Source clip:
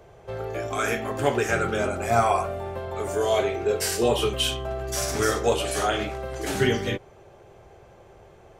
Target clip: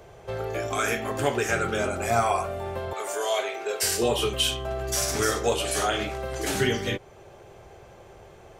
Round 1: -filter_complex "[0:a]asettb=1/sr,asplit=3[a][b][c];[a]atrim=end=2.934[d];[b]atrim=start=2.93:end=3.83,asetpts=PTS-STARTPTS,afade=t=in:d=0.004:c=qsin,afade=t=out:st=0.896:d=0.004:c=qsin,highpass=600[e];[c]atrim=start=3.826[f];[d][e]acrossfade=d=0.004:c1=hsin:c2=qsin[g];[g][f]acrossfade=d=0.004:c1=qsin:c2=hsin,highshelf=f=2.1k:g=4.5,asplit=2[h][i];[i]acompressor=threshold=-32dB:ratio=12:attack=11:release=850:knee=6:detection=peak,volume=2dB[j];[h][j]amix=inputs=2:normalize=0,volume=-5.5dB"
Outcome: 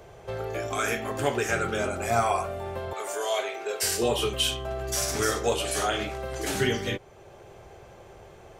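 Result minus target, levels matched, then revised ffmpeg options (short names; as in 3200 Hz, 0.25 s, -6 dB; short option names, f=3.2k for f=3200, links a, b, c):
compressor: peak gain reduction +5.5 dB
-filter_complex "[0:a]asettb=1/sr,asplit=3[a][b][c];[a]atrim=end=2.934[d];[b]atrim=start=2.93:end=3.83,asetpts=PTS-STARTPTS,afade=t=in:d=0.004:c=qsin,afade=t=out:st=0.896:d=0.004:c=qsin,highpass=600[e];[c]atrim=start=3.826[f];[d][e]acrossfade=d=0.004:c1=hsin:c2=qsin[g];[g][f]acrossfade=d=0.004:c1=qsin:c2=hsin,highshelf=f=2.1k:g=4.5,asplit=2[h][i];[i]acompressor=threshold=-26dB:ratio=12:attack=11:release=850:knee=6:detection=peak,volume=2dB[j];[h][j]amix=inputs=2:normalize=0,volume=-5.5dB"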